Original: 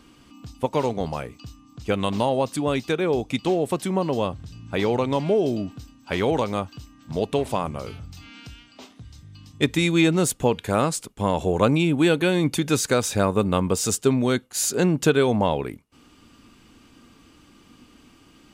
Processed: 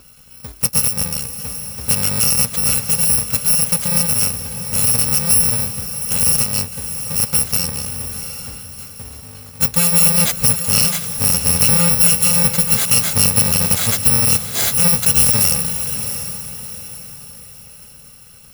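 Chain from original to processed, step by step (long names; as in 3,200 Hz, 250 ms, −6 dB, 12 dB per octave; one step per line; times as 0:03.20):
samples in bit-reversed order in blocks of 128 samples
feedback delay with all-pass diffusion 714 ms, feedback 40%, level −10 dB
boost into a limiter +7.5 dB
level −1 dB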